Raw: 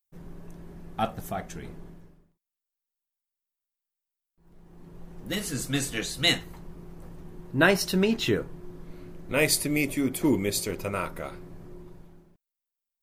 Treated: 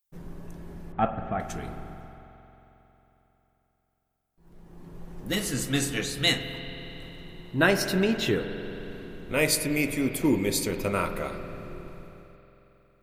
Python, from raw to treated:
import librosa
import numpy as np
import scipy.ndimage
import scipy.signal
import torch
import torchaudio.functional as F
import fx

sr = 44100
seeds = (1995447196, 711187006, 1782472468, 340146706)

p1 = fx.lowpass(x, sr, hz=2300.0, slope=24, at=(0.92, 1.4))
p2 = fx.rider(p1, sr, range_db=5, speed_s=0.5)
p3 = p1 + (p2 * librosa.db_to_amplitude(-2.0))
p4 = fx.rev_spring(p3, sr, rt60_s=3.7, pass_ms=(45,), chirp_ms=60, drr_db=8.0)
y = p4 * librosa.db_to_amplitude(-5.0)